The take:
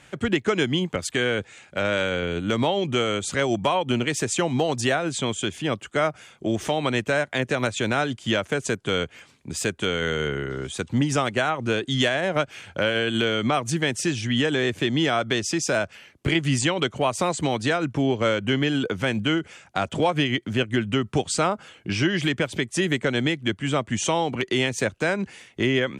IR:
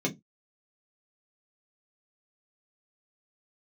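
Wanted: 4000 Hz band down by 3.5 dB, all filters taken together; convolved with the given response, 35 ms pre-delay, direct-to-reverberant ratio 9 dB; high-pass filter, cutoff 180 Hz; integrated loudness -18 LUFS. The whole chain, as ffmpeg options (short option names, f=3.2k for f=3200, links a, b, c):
-filter_complex "[0:a]highpass=180,equalizer=f=4k:t=o:g=-5,asplit=2[a][b];[1:a]atrim=start_sample=2205,adelay=35[c];[b][c]afir=irnorm=-1:irlink=0,volume=-16.5dB[d];[a][d]amix=inputs=2:normalize=0,volume=6dB"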